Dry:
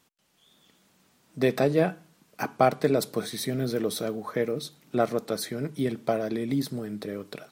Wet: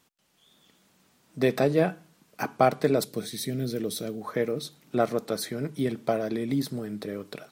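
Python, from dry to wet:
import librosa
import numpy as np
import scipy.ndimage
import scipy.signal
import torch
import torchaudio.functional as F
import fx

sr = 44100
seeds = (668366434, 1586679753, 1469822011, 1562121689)

y = fx.peak_eq(x, sr, hz=1000.0, db=-11.0, octaves=1.7, at=(3.04, 4.21))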